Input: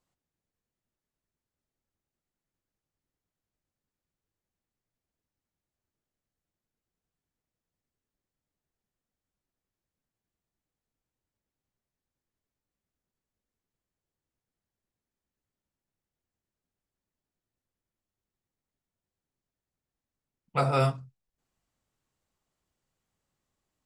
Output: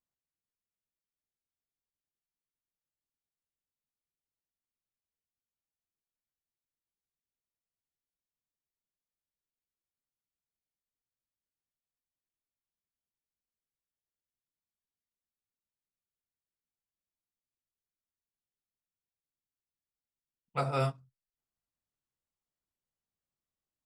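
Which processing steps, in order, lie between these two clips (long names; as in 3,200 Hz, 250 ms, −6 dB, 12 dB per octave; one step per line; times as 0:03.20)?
expander for the loud parts 1.5 to 1, over −42 dBFS
level −5 dB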